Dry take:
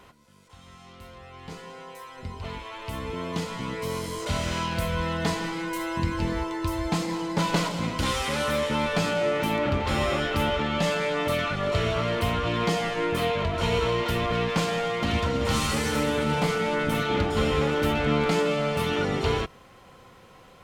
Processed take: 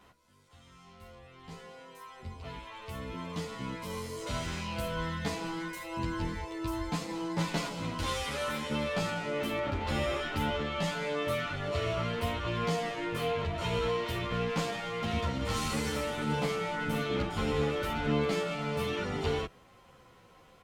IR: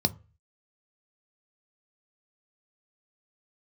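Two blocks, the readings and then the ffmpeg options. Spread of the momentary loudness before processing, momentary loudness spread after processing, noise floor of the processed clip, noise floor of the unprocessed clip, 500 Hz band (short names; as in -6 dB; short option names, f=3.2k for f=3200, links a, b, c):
11 LU, 11 LU, -59 dBFS, -52 dBFS, -7.0 dB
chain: -filter_complex "[0:a]asplit=2[a][b];[b]adelay=11.3,afreqshift=-1.7[c];[a][c]amix=inputs=2:normalize=1,volume=-4dB"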